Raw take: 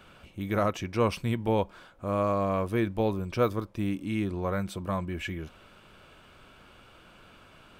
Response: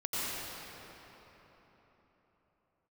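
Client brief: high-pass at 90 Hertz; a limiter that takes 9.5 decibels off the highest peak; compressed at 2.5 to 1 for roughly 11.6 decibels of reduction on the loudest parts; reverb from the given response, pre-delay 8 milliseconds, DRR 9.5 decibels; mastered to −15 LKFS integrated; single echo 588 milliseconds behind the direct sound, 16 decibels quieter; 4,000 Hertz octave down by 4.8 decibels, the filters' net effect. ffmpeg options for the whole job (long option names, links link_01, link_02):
-filter_complex "[0:a]highpass=90,equalizer=frequency=4000:width_type=o:gain=-7,acompressor=threshold=-38dB:ratio=2.5,alimiter=level_in=8.5dB:limit=-24dB:level=0:latency=1,volume=-8.5dB,aecho=1:1:588:0.158,asplit=2[link_01][link_02];[1:a]atrim=start_sample=2205,adelay=8[link_03];[link_02][link_03]afir=irnorm=-1:irlink=0,volume=-17dB[link_04];[link_01][link_04]amix=inputs=2:normalize=0,volume=29dB"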